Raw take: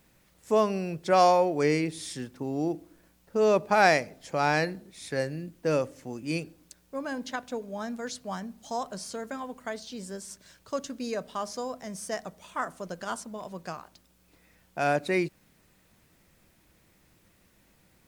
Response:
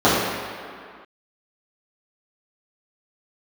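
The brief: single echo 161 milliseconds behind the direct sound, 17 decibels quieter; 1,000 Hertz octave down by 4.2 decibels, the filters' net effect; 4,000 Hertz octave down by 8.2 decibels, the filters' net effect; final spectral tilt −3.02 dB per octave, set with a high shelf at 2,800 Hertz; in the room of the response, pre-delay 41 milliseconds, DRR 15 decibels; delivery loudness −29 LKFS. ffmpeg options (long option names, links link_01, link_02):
-filter_complex "[0:a]equalizer=frequency=1000:width_type=o:gain=-5.5,highshelf=frequency=2800:gain=-4.5,equalizer=frequency=4000:width_type=o:gain=-6.5,aecho=1:1:161:0.141,asplit=2[link_01][link_02];[1:a]atrim=start_sample=2205,adelay=41[link_03];[link_02][link_03]afir=irnorm=-1:irlink=0,volume=-41dB[link_04];[link_01][link_04]amix=inputs=2:normalize=0,volume=2.5dB"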